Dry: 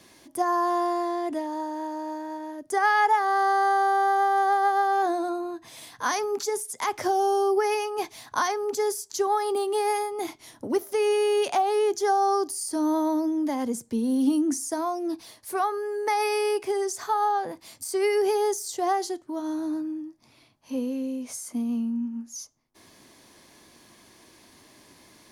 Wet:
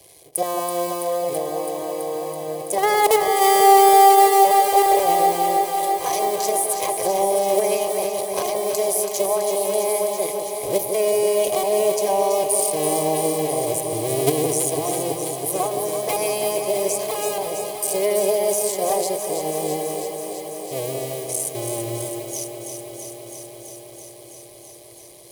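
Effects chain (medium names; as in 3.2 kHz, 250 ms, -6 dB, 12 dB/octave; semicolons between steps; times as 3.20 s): cycle switcher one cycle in 2, muted; in parallel at +1.5 dB: level held to a coarse grid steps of 23 dB; on the sum: resonant high shelf 7.7 kHz +6 dB, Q 1.5; static phaser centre 580 Hz, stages 4; comb of notches 900 Hz; on a send: echo whose repeats swap between lows and highs 165 ms, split 950 Hz, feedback 89%, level -6 dB; on the sum: trim +6.5 dB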